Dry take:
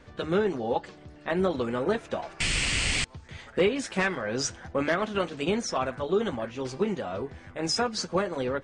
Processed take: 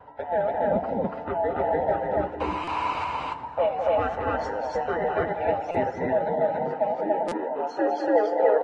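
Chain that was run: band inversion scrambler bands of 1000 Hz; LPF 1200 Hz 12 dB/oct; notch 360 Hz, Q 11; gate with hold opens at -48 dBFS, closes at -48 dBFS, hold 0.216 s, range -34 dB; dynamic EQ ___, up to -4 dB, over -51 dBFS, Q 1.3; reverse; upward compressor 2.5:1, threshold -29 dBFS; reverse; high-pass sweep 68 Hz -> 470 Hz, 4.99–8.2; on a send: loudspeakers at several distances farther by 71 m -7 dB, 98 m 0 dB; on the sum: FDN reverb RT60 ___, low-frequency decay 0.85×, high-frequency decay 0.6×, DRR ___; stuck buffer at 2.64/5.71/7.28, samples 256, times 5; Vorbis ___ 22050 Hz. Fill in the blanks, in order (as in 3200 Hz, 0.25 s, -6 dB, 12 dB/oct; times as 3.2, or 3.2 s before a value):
100 Hz, 3 s, 12.5 dB, 32 kbps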